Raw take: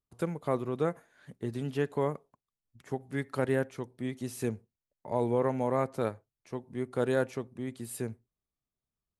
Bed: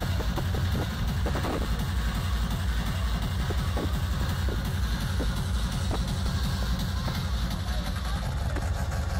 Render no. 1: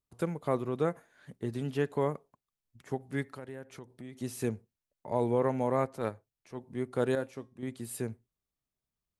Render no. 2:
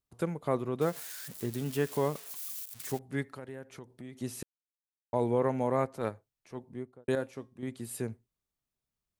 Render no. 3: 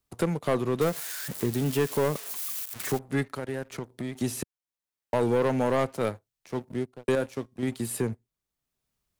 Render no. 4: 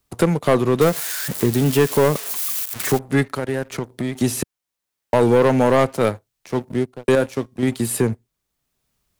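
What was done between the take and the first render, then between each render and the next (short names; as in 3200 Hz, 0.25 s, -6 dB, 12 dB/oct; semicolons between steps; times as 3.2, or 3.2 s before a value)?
3.23–4.18 compressor 3:1, threshold -44 dBFS; 5.85–6.61 transient shaper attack -7 dB, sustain -2 dB; 7.15–7.63 resonator 270 Hz, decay 0.29 s
0.81–2.99 switching spikes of -32.5 dBFS; 4.43–5.13 mute; 6.55–7.08 studio fade out
sample leveller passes 2; three-band squash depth 40%
gain +9.5 dB; limiter -3 dBFS, peak gain reduction 1 dB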